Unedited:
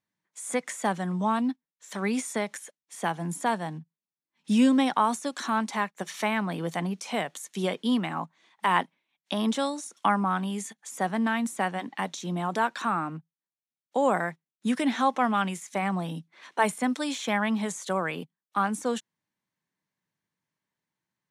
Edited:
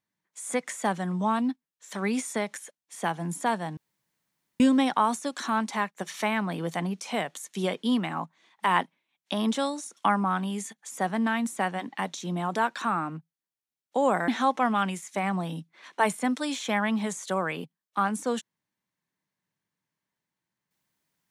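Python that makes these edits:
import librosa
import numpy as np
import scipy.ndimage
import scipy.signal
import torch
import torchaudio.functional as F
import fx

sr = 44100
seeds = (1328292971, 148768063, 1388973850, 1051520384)

y = fx.edit(x, sr, fx.room_tone_fill(start_s=3.77, length_s=0.83),
    fx.cut(start_s=14.28, length_s=0.59), tone=tone)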